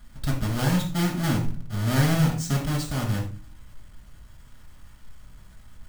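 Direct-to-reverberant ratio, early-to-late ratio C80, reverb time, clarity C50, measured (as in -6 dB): -2.0 dB, 11.5 dB, 0.40 s, 6.5 dB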